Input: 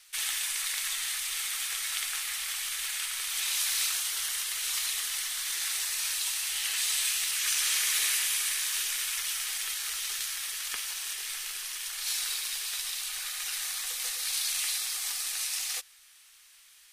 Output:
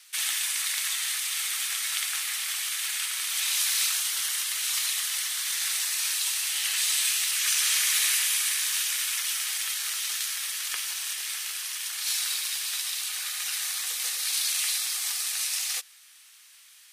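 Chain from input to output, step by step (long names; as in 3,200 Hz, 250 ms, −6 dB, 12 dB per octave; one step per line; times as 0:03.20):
high-pass filter 720 Hz 6 dB per octave
level +3.5 dB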